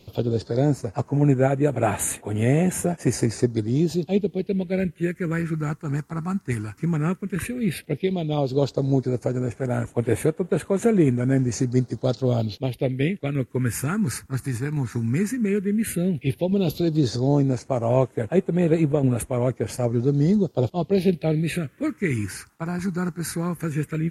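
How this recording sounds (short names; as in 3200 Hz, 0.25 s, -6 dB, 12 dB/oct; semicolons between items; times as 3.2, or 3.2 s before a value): phasing stages 4, 0.12 Hz, lowest notch 540–4800 Hz; a quantiser's noise floor 12-bit, dither none; MP3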